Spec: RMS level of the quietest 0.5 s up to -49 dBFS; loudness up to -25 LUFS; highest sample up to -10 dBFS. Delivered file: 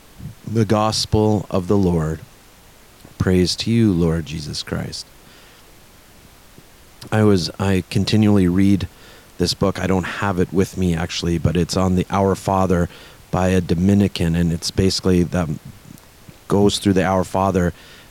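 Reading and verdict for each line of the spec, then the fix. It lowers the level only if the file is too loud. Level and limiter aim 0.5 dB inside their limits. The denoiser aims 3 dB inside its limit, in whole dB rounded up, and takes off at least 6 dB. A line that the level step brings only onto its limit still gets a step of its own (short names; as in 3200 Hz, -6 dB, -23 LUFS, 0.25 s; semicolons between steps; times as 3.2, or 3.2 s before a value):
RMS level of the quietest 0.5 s -47 dBFS: fail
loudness -19.0 LUFS: fail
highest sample -4.5 dBFS: fail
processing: gain -6.5 dB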